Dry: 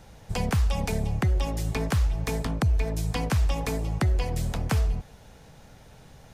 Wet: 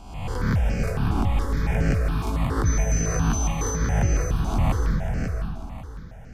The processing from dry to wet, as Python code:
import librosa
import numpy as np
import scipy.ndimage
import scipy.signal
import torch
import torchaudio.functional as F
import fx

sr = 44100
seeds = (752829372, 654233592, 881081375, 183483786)

y = fx.spec_swells(x, sr, rise_s=1.11)
y = fx.high_shelf(y, sr, hz=2800.0, db=-10.0)
y = fx.dmg_tone(y, sr, hz=6100.0, level_db=-29.0, at=(2.65, 3.76), fade=0.02)
y = fx.echo_feedback(y, sr, ms=543, feedback_pct=32, wet_db=-5.5)
y = fx.rev_freeverb(y, sr, rt60_s=1.6, hf_ratio=0.65, predelay_ms=105, drr_db=4.5)
y = fx.phaser_held(y, sr, hz=7.2, low_hz=500.0, high_hz=3600.0)